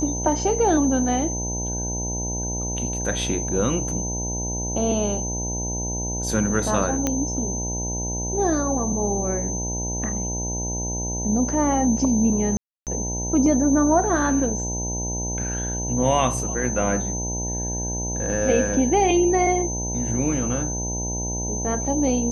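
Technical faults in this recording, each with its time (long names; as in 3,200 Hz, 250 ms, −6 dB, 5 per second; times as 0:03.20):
mains buzz 60 Hz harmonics 16 −29 dBFS
whistle 6,200 Hz −28 dBFS
0:07.07: click −8 dBFS
0:12.57–0:12.87: drop-out 298 ms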